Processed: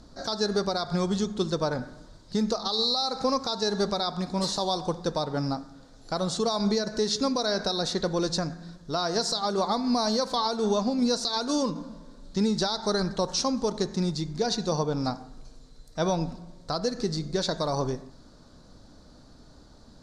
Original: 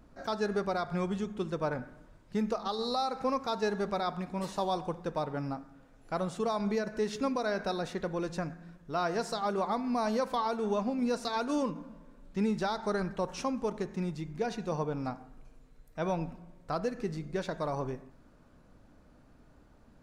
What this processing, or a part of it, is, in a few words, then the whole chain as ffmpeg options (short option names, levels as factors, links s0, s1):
over-bright horn tweeter: -af "lowpass=7300,highshelf=f=3300:t=q:w=3:g=8.5,alimiter=limit=0.0708:level=0:latency=1:release=161,volume=2.24"